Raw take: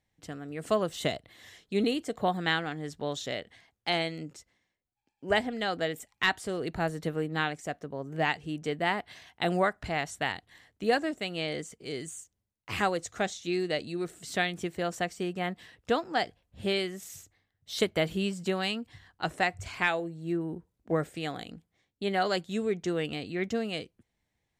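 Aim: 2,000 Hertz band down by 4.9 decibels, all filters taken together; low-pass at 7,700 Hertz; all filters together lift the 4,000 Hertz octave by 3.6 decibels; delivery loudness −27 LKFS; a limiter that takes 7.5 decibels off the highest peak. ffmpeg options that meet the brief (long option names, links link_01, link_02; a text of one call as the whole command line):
ffmpeg -i in.wav -af "lowpass=7700,equalizer=frequency=2000:width_type=o:gain=-8,equalizer=frequency=4000:width_type=o:gain=8,volume=6.5dB,alimiter=limit=-14dB:level=0:latency=1" out.wav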